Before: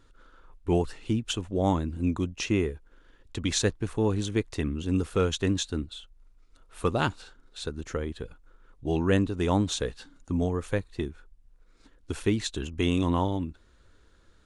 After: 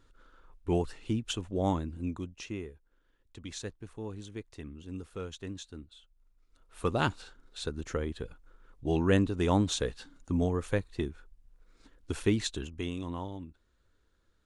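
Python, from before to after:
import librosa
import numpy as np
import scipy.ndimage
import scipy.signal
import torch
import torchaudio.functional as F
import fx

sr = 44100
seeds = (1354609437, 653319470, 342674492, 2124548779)

y = fx.gain(x, sr, db=fx.line((1.68, -4.0), (2.7, -14.5), (5.87, -14.5), (7.08, -1.5), (12.47, -1.5), (12.95, -12.0)))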